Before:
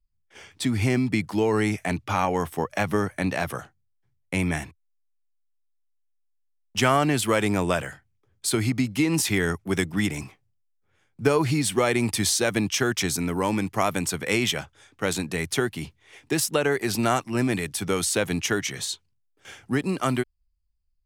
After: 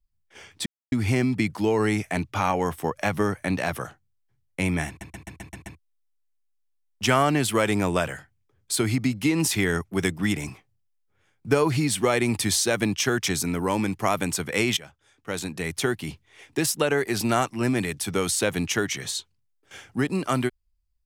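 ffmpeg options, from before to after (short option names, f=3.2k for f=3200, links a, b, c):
-filter_complex "[0:a]asplit=10[a][b][c][d][e][f][g][h][i][j];[a]atrim=end=0.66,asetpts=PTS-STARTPTS,afade=t=out:st=0.656:d=0.004:c=hsin,apad=pad_dur=0.26[k];[b]atrim=start=0.66:end=4.752,asetpts=PTS-STARTPTS,afade=t=in:d=0.004:c=hsin[l];[c]atrim=start=4.618:end=4.752[m];[d]atrim=start=4.618:end=4.752[n];[e]atrim=start=4.618:end=4.752[o];[f]atrim=start=4.618:end=4.752[p];[g]atrim=start=4.618:end=4.752[q];[h]atrim=start=4.618:end=4.752[r];[i]atrim=start=5.528:end=14.51,asetpts=PTS-STARTPTS,afade=t=out:st=8.978:d=0.004:c=hsin:silence=0.16788[s];[j]atrim=start=14.51,asetpts=PTS-STARTPTS,afade=t=in:d=1.15:silence=0.16788[t];[k][l]concat=n=2:v=0:a=1[u];[u][m]acrossfade=d=0.004:c1=hsin:c2=hsin[v];[v][n]acrossfade=d=0.004:c1=hsin:c2=hsin[w];[w][o]acrossfade=d=0.004:c1=hsin:c2=hsin[x];[x][p]acrossfade=d=0.004:c1=hsin:c2=hsin[y];[y][q]acrossfade=d=0.004:c1=hsin:c2=hsin[z];[z][r]acrossfade=d=0.004:c1=hsin:c2=hsin[aa];[s][t]concat=n=2:v=0:a=1[ab];[aa][ab]acrossfade=d=0.004:c1=hsin:c2=hsin"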